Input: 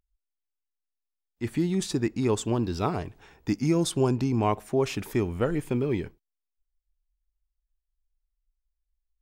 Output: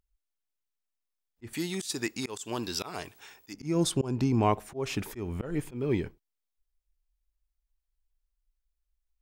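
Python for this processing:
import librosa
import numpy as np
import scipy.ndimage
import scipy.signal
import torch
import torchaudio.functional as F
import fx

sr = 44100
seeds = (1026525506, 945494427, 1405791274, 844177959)

y = fx.tilt_eq(x, sr, slope=4.0, at=(1.53, 3.54))
y = fx.auto_swell(y, sr, attack_ms=199.0)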